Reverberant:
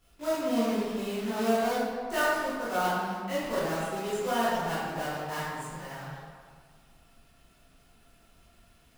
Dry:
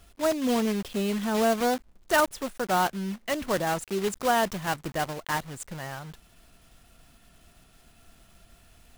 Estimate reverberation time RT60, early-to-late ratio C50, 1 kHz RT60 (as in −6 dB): 1.8 s, −3.5 dB, 1.9 s